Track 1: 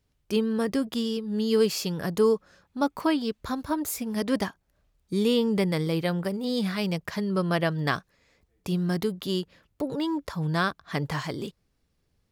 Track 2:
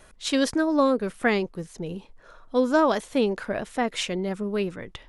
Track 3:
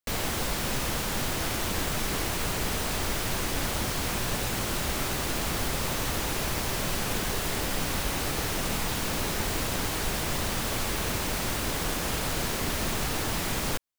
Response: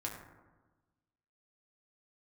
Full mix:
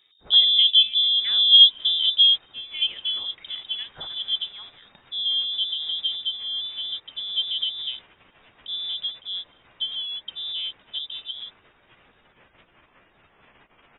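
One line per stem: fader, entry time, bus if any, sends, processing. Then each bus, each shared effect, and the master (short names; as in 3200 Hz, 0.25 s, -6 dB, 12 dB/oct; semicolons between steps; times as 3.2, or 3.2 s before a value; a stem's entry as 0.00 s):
2.04 s 0 dB -> 2.51 s -11.5 dB, 0.00 s, no send, synth low-pass 580 Hz, resonance Q 6; low shelf 430 Hz +6.5 dB
-15.5 dB, 0.00 s, no send, bell 2700 Hz +2.5 dB 1.7 oct
-5.5 dB, 1.10 s, no send, spectral gate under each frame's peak -20 dB weak; limiter -31 dBFS, peak gain reduction 9.5 dB; ensemble effect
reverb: off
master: inverted band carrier 3700 Hz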